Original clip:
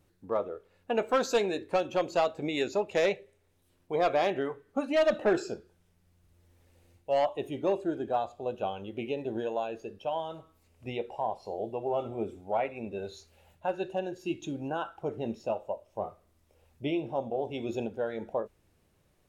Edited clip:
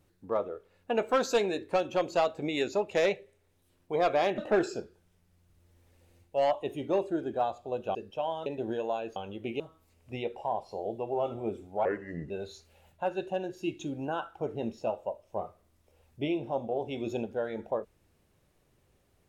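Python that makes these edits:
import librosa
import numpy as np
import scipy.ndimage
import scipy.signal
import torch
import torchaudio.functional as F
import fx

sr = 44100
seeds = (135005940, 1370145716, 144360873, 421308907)

y = fx.edit(x, sr, fx.cut(start_s=4.38, length_s=0.74),
    fx.swap(start_s=8.69, length_s=0.44, other_s=9.83, other_length_s=0.51),
    fx.speed_span(start_s=12.59, length_s=0.34, speed=0.75), tone=tone)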